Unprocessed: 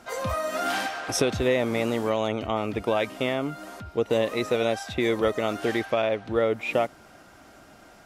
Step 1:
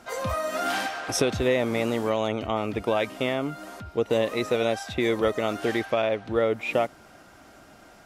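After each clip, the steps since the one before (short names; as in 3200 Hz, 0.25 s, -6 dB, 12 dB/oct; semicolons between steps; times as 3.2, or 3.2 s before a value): nothing audible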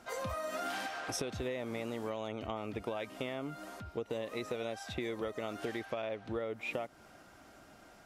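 compressor, threshold -28 dBFS, peak gain reduction 10 dB; gain -6.5 dB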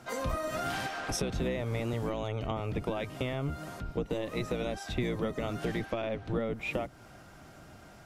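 octaver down 1 oct, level +4 dB; gain +3.5 dB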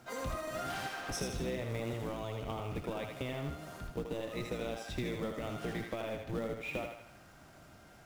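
thinning echo 79 ms, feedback 53%, high-pass 460 Hz, level -4 dB; in parallel at -7 dB: companded quantiser 4-bit; on the sum: gain -9 dB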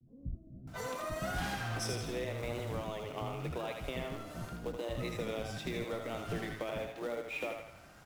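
bands offset in time lows, highs 0.68 s, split 250 Hz; vibrato 0.88 Hz 66 cents; gain +1 dB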